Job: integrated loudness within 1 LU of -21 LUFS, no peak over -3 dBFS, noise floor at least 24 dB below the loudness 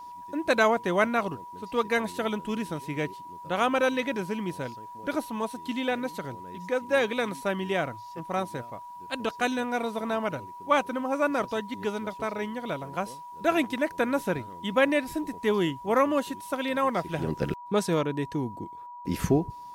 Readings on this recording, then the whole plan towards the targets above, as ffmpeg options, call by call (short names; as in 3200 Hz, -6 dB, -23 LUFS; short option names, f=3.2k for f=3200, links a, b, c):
steady tone 970 Hz; tone level -40 dBFS; loudness -28.5 LUFS; peak -9.0 dBFS; loudness target -21.0 LUFS
-> -af "bandreject=f=970:w=30"
-af "volume=7.5dB,alimiter=limit=-3dB:level=0:latency=1"